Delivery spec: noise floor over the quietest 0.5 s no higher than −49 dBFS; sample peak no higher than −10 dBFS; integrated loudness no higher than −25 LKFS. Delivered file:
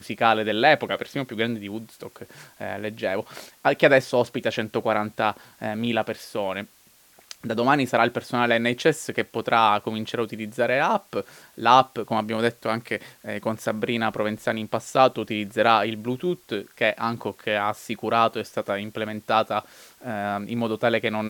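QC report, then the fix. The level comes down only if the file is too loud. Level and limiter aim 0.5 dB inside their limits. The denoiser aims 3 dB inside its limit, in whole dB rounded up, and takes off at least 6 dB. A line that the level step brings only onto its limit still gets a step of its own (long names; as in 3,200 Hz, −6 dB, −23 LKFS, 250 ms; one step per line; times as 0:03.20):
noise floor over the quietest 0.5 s −56 dBFS: in spec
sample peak −3.0 dBFS: out of spec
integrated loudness −24.0 LKFS: out of spec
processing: level −1.5 dB
brickwall limiter −10.5 dBFS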